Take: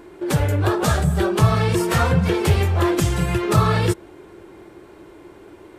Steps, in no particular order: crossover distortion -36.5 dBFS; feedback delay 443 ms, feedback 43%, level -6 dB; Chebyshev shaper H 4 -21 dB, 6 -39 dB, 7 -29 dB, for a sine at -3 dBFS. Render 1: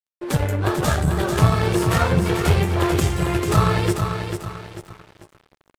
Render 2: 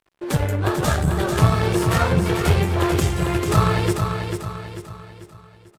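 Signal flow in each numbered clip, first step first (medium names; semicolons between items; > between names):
Chebyshev shaper > feedback delay > crossover distortion; crossover distortion > Chebyshev shaper > feedback delay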